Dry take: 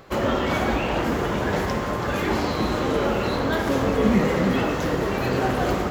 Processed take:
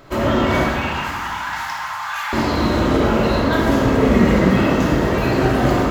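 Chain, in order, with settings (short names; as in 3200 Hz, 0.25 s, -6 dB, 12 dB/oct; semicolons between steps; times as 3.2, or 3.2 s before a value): 0.64–2.33 Chebyshev high-pass 820 Hz, order 5; shoebox room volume 1500 m³, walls mixed, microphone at 2.8 m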